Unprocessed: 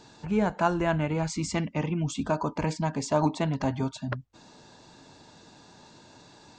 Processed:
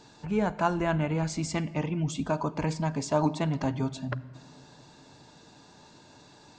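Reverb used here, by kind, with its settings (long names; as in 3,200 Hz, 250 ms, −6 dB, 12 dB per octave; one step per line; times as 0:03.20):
rectangular room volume 3,700 cubic metres, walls mixed, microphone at 0.36 metres
level −1.5 dB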